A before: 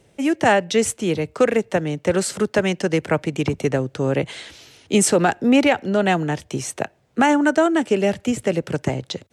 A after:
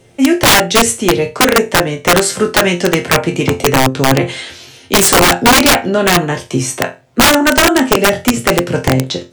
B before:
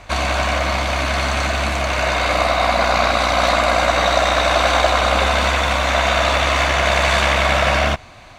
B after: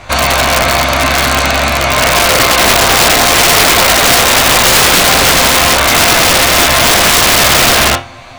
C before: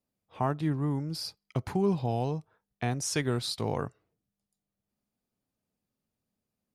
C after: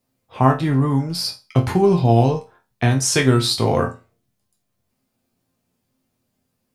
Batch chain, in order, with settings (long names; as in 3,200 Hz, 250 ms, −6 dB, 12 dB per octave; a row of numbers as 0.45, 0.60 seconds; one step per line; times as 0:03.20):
resonators tuned to a chord F2 sus4, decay 0.28 s
wrap-around overflow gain 23.5 dB
normalise the peak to −2 dBFS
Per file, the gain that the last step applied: +21.5, +21.5, +25.0 decibels